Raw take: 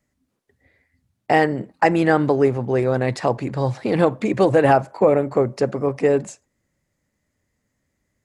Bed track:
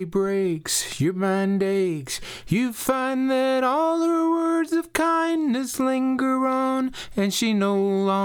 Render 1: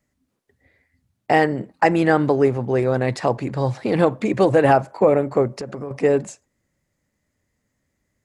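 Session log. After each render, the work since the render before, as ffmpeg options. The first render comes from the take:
-filter_complex "[0:a]asettb=1/sr,asplit=3[s0][s1][s2];[s0]atrim=end=5.474[s3];[s1]atrim=start=5.47:end=5.91,asetpts=PTS-STARTPTS,afade=t=in:d=0.004:c=qsin,afade=t=out:st=0.436:d=0.004:c=qsin,acompressor=threshold=0.0501:ratio=8:attack=3.2:release=140:knee=1:detection=peak[s4];[s2]atrim=start=5.906[s5];[s3][s4]acrossfade=d=0.004:c1=hsin:c2=qsin[s6];[s6][s5]acrossfade=d=0.004:c1=qsin:c2=hsin"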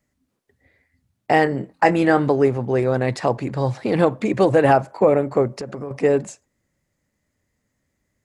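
-filter_complex "[0:a]asettb=1/sr,asplit=3[s0][s1][s2];[s0]atrim=end=1.444[s3];[s1]atrim=start=1.44:end=2.28,asetpts=PTS-STARTPTS,afade=t=in:d=0.004:c=qsin,afade=t=out:st=0.836:d=0.004:c=qsin,asplit=2[s4][s5];[s5]adelay=22,volume=0.316[s6];[s4][s6]amix=inputs=2:normalize=0,atrim=end_sample=37044[s7];[s2]atrim=start=2.276[s8];[s3][s7]acrossfade=d=0.004:c1=hsin:c2=qsin[s9];[s9][s8]acrossfade=d=0.004:c1=qsin:c2=hsin"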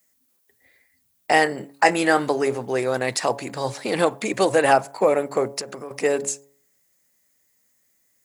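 -af "aemphasis=mode=production:type=riaa,bandreject=f=139.9:t=h:w=4,bandreject=f=279.8:t=h:w=4,bandreject=f=419.7:t=h:w=4,bandreject=f=559.6:t=h:w=4,bandreject=f=699.5:t=h:w=4,bandreject=f=839.4:t=h:w=4,bandreject=f=979.3:t=h:w=4"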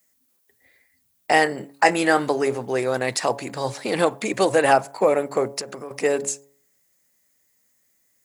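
-af anull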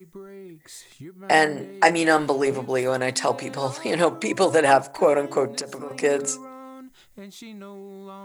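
-filter_complex "[1:a]volume=0.112[s0];[0:a][s0]amix=inputs=2:normalize=0"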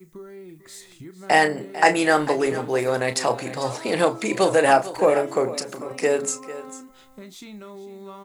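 -filter_complex "[0:a]asplit=2[s0][s1];[s1]adelay=33,volume=0.282[s2];[s0][s2]amix=inputs=2:normalize=0,aecho=1:1:447:0.178"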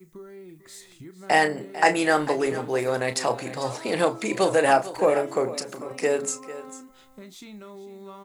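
-af "volume=0.75"

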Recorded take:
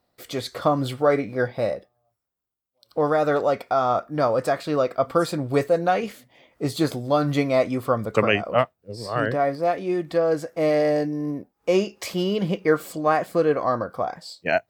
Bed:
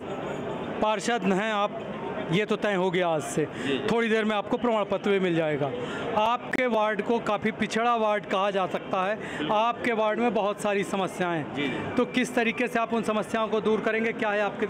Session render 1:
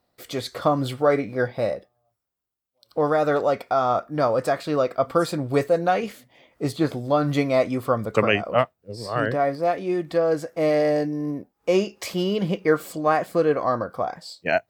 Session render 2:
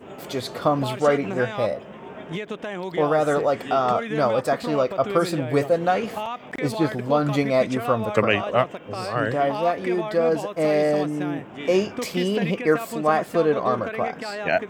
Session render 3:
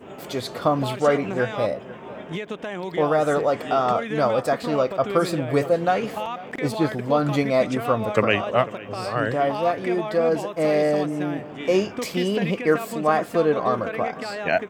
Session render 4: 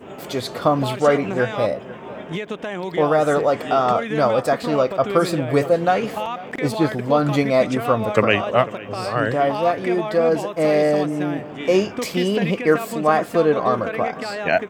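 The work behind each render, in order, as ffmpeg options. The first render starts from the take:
-filter_complex "[0:a]asettb=1/sr,asplit=3[s0][s1][s2];[s0]atrim=end=6.724[s3];[s1]atrim=start=6.72:end=7.31,asetpts=PTS-STARTPTS,afade=t=in:d=0.004:c=qsin,afade=t=out:st=0.586:d=0.004:c=qsin,acrossover=split=3300[s4][s5];[s5]acompressor=threshold=0.00447:ratio=4:attack=1:release=60[s6];[s4][s6]amix=inputs=2:normalize=0[s7];[s2]atrim=start=7.306[s8];[s3][s7]acrossfade=d=0.004:c1=hsin:c2=qsin[s9];[s9][s8]acrossfade=d=0.004:c1=qsin:c2=hsin"
-filter_complex "[1:a]volume=0.501[s0];[0:a][s0]amix=inputs=2:normalize=0"
-filter_complex "[0:a]asplit=2[s0][s1];[s1]adelay=495.6,volume=0.126,highshelf=f=4000:g=-11.2[s2];[s0][s2]amix=inputs=2:normalize=0"
-af "volume=1.41"

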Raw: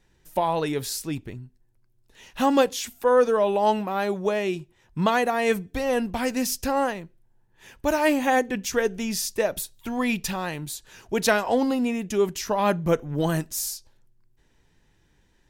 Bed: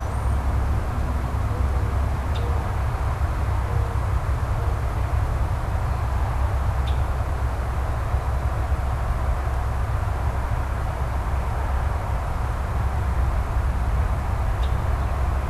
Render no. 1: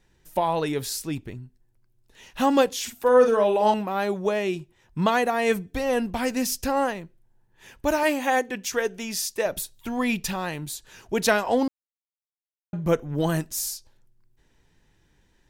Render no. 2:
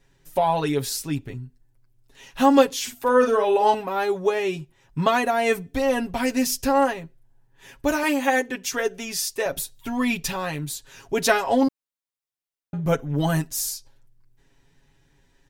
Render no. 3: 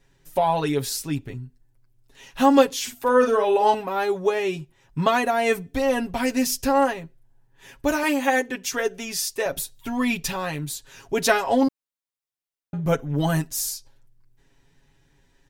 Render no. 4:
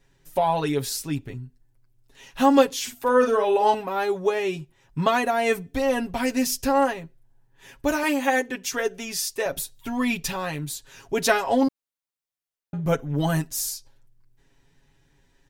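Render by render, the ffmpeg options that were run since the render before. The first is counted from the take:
-filter_complex "[0:a]asettb=1/sr,asplit=3[s0][s1][s2];[s0]atrim=end=2.764[s3];[s1]atrim=start=2.76:end=3.74,asetpts=PTS-STARTPTS,afade=t=in:d=0.004:c=qsin,afade=t=out:st=0.976:d=0.004:c=qsin,asplit=2[s4][s5];[s5]adelay=48,volume=0.473[s6];[s4][s6]amix=inputs=2:normalize=0,atrim=end_sample=43218[s7];[s2]atrim=start=3.736[s8];[s3][s7]acrossfade=d=0.004:c1=hsin:c2=qsin[s9];[s9][s8]acrossfade=d=0.004:c1=qsin:c2=hsin,asettb=1/sr,asplit=3[s10][s11][s12];[s10]atrim=end=8.034[s13];[s11]atrim=start=8.03:end=9.46,asetpts=PTS-STARTPTS,afade=t=in:d=0.004:c=qsin,afade=t=out:st=1.426:d=0.004:c=qsin,lowshelf=f=220:g=-12[s14];[s12]atrim=start=9.456[s15];[s13][s14]acrossfade=d=0.004:c1=hsin:c2=qsin[s16];[s16][s15]acrossfade=d=0.004:c1=qsin:c2=hsin,asplit=3[s17][s18][s19];[s17]atrim=end=11.68,asetpts=PTS-STARTPTS,afade=t=out:st=11.676:d=0.004:c=hsin[s20];[s18]atrim=start=11.68:end=12.73,asetpts=PTS-STARTPTS,volume=0[s21];[s19]atrim=start=12.73,asetpts=PTS-STARTPTS,afade=t=in:d=0.004:c=hsin[s22];[s20][s21][s22]concat=n=3:v=0:a=1"
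-af "aecho=1:1:7.3:0.76"
-af anull
-af "volume=0.891"

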